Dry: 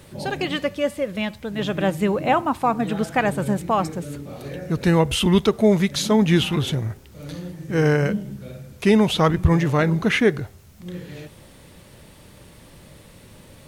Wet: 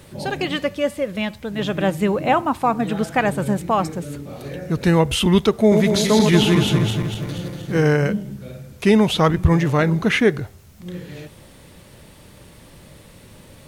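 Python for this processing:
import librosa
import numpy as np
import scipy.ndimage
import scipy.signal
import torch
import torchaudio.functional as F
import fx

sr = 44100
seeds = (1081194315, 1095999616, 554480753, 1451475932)

y = fx.reverse_delay_fb(x, sr, ms=119, feedback_pct=72, wet_db=-4, at=(5.6, 7.82))
y = y * 10.0 ** (1.5 / 20.0)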